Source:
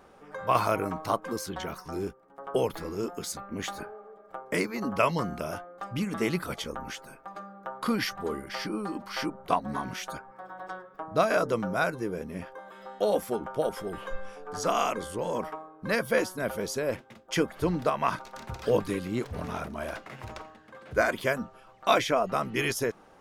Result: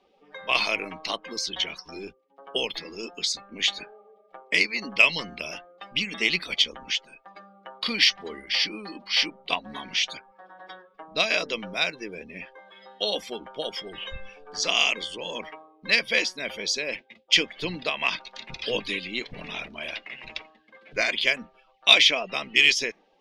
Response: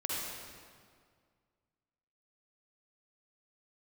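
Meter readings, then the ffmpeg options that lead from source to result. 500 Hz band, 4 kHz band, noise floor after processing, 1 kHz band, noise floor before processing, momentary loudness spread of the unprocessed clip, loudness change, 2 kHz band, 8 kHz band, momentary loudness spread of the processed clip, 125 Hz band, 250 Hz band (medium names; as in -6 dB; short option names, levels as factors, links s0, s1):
-5.0 dB, +16.5 dB, -62 dBFS, -5.5 dB, -55 dBFS, 15 LU, +6.0 dB, +9.0 dB, +5.5 dB, 18 LU, -9.5 dB, -6.0 dB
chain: -filter_complex "[0:a]afftdn=nr=20:nf=-50,acrossover=split=120|4300[s0][s1][s2];[s0]aeval=exprs='0.075*(cos(1*acos(clip(val(0)/0.075,-1,1)))-cos(1*PI/2))+0.0188*(cos(7*acos(clip(val(0)/0.075,-1,1)))-cos(7*PI/2))+0.0168*(cos(8*acos(clip(val(0)/0.075,-1,1)))-cos(8*PI/2))':c=same[s3];[s1]aexciter=amount=12.6:drive=8.2:freq=2200[s4];[s2]acompressor=threshold=0.00141:ratio=6[s5];[s3][s4][s5]amix=inputs=3:normalize=0,volume=0.562"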